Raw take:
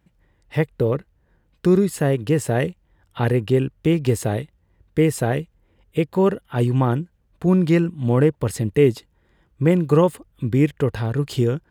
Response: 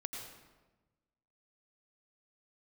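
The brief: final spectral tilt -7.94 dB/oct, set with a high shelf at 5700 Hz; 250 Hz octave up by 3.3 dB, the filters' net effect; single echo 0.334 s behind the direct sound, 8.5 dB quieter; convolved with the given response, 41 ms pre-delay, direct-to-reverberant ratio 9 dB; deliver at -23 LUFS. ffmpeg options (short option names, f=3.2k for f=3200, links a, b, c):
-filter_complex "[0:a]equalizer=f=250:t=o:g=5,highshelf=f=5.7k:g=-8,aecho=1:1:334:0.376,asplit=2[a][b];[1:a]atrim=start_sample=2205,adelay=41[c];[b][c]afir=irnorm=-1:irlink=0,volume=-8.5dB[d];[a][d]amix=inputs=2:normalize=0,volume=-5dB"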